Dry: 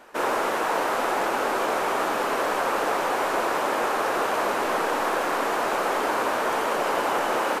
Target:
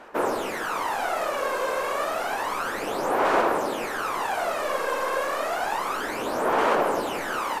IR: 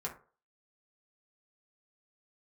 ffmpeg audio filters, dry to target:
-af "aphaser=in_gain=1:out_gain=1:delay=1.9:decay=0.64:speed=0.3:type=sinusoidal,volume=-4.5dB"

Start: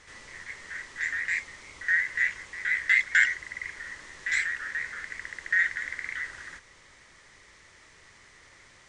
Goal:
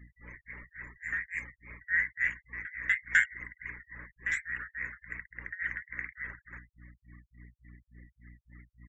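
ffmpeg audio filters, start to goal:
ffmpeg -i in.wav -filter_complex "[0:a]equalizer=frequency=4300:width=2.4:gain=-14.5,asplit=2[link_01][link_02];[link_02]adelay=422,lowpass=frequency=1900:poles=1,volume=-20dB,asplit=2[link_03][link_04];[link_04]adelay=422,lowpass=frequency=1900:poles=1,volume=0.47,asplit=2[link_05][link_06];[link_06]adelay=422,lowpass=frequency=1900:poles=1,volume=0.47,asplit=2[link_07][link_08];[link_08]adelay=422,lowpass=frequency=1900:poles=1,volume=0.47[link_09];[link_03][link_05][link_07][link_09]amix=inputs=4:normalize=0[link_10];[link_01][link_10]amix=inputs=2:normalize=0,aeval=exprs='val(0)+0.00355*(sin(2*PI*60*n/s)+sin(2*PI*2*60*n/s)/2+sin(2*PI*3*60*n/s)/3+sin(2*PI*4*60*n/s)/4+sin(2*PI*5*60*n/s)/5)':channel_layout=same,tremolo=f=3.5:d=0.95,afftfilt=real='re*gte(hypot(re,im),0.00398)':imag='im*gte(hypot(re,im),0.00398)':win_size=1024:overlap=0.75" out.wav

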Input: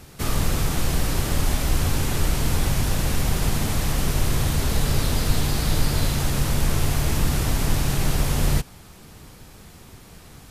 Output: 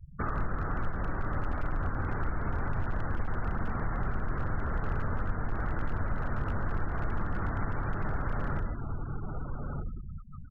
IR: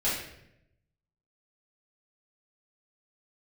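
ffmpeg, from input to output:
-filter_complex "[0:a]lowpass=frequency=1400:width_type=q:width=3.1,asplit=2[link_01][link_02];[link_02]adelay=1224,volume=-10dB,highshelf=frequency=4000:gain=-27.6[link_03];[link_01][link_03]amix=inputs=2:normalize=0,asplit=2[link_04][link_05];[1:a]atrim=start_sample=2205,adelay=73[link_06];[link_05][link_06]afir=irnorm=-1:irlink=0,volume=-15dB[link_07];[link_04][link_07]amix=inputs=2:normalize=0,afftfilt=real='re*gte(hypot(re,im),0.0316)':imag='im*gte(hypot(re,im),0.0316)':win_size=1024:overlap=0.75,aeval=exprs='clip(val(0),-1,0.224)':channel_layout=same,acompressor=threshold=-33dB:ratio=2.5"

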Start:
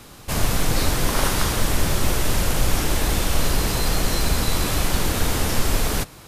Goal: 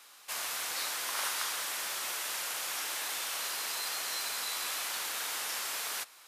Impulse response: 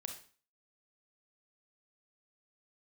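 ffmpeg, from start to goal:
-af "highpass=1100,volume=-8dB"

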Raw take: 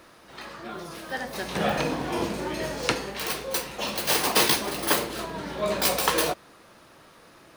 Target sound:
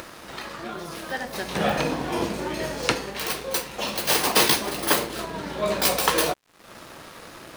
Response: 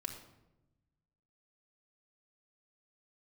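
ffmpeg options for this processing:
-af "acompressor=mode=upward:threshold=-29dB:ratio=2.5,aeval=exprs='sgn(val(0))*max(abs(val(0))-0.00501,0)':channel_layout=same,volume=2.5dB"

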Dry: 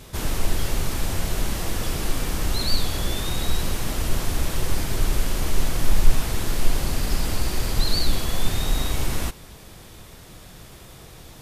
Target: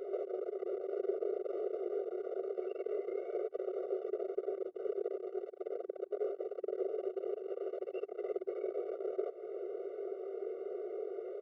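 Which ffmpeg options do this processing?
ffmpeg -i in.wav -filter_complex "[0:a]asplit=4[link_01][link_02][link_03][link_04];[link_02]adelay=188,afreqshift=-38,volume=-24dB[link_05];[link_03]adelay=376,afreqshift=-76,volume=-29.5dB[link_06];[link_04]adelay=564,afreqshift=-114,volume=-35dB[link_07];[link_01][link_05][link_06][link_07]amix=inputs=4:normalize=0,acontrast=64,volume=16dB,asoftclip=hard,volume=-16dB,afreqshift=50,lowpass=frequency=470:width_type=q:width=4.9,asetrate=26222,aresample=44100,atempo=1.68179,highpass=frequency=110:poles=1,acompressor=threshold=-30dB:ratio=6,afftfilt=real='re*eq(mod(floor(b*sr/1024/380),2),1)':imag='im*eq(mod(floor(b*sr/1024/380),2),1)':win_size=1024:overlap=0.75,volume=14dB" out.wav

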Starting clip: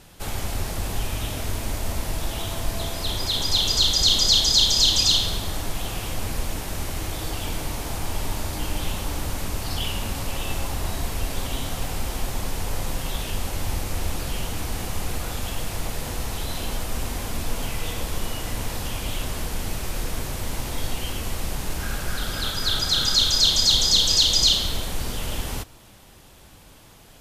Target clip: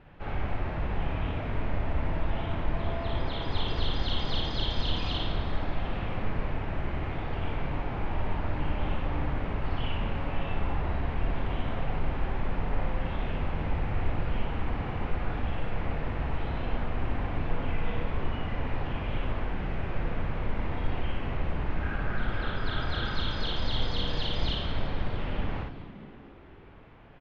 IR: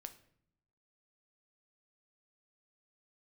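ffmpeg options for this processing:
-filter_complex "[0:a]lowpass=frequency=2400:width=0.5412,lowpass=frequency=2400:width=1.3066,asplit=7[link_01][link_02][link_03][link_04][link_05][link_06][link_07];[link_02]adelay=212,afreqshift=64,volume=-15.5dB[link_08];[link_03]adelay=424,afreqshift=128,volume=-19.7dB[link_09];[link_04]adelay=636,afreqshift=192,volume=-23.8dB[link_10];[link_05]adelay=848,afreqshift=256,volume=-28dB[link_11];[link_06]adelay=1060,afreqshift=320,volume=-32.1dB[link_12];[link_07]adelay=1272,afreqshift=384,volume=-36.3dB[link_13];[link_01][link_08][link_09][link_10][link_11][link_12][link_13]amix=inputs=7:normalize=0,asplit=2[link_14][link_15];[1:a]atrim=start_sample=2205,adelay=58[link_16];[link_15][link_16]afir=irnorm=-1:irlink=0,volume=4dB[link_17];[link_14][link_17]amix=inputs=2:normalize=0,volume=-4.5dB"

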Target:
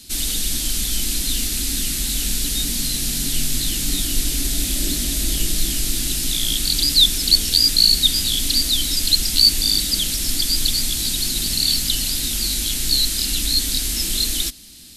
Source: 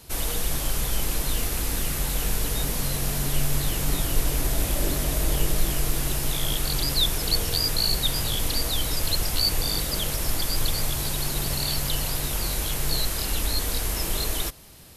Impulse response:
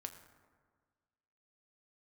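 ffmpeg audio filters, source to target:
-af "equalizer=frequency=125:width_type=o:width=1:gain=-10,equalizer=frequency=250:width_type=o:width=1:gain=11,equalizer=frequency=500:width_type=o:width=1:gain=-12,equalizer=frequency=1000:width_type=o:width=1:gain=-12,equalizer=frequency=4000:width_type=o:width=1:gain=9,equalizer=frequency=8000:width_type=o:width=1:gain=7,volume=1.5dB"

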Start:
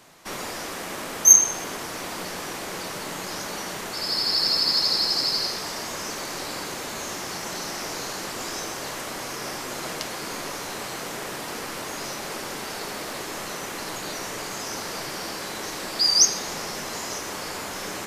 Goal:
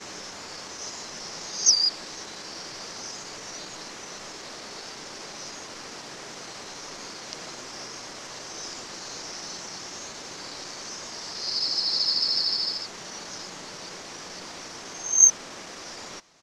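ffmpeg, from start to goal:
ffmpeg -i in.wav -af "areverse,atempo=1.1,lowpass=frequency=5800:width_type=q:width=2.4,volume=-8.5dB" out.wav

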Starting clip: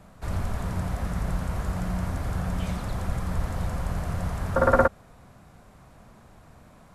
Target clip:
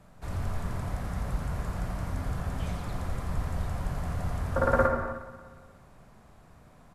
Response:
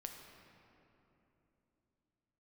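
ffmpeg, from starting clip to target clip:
-filter_complex "[0:a]aecho=1:1:179|358|537|716|895:0.168|0.0873|0.0454|0.0236|0.0123[link_01];[1:a]atrim=start_sample=2205,afade=type=out:start_time=0.37:duration=0.01,atrim=end_sample=16758[link_02];[link_01][link_02]afir=irnorm=-1:irlink=0"

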